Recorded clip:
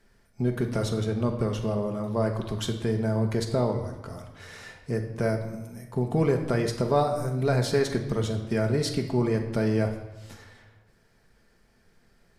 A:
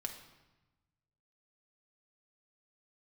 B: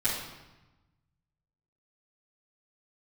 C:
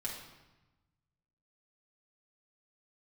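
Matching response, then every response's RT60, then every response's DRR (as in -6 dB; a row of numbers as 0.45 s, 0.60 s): A; 1.1 s, 1.1 s, 1.1 s; 3.0 dB, -14.0 dB, -5.0 dB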